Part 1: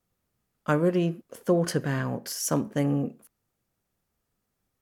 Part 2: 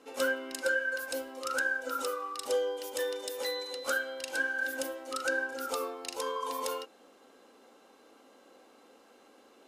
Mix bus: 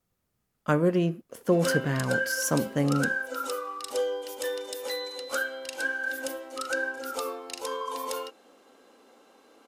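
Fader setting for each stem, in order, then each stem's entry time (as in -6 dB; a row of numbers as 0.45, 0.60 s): 0.0, +1.5 dB; 0.00, 1.45 s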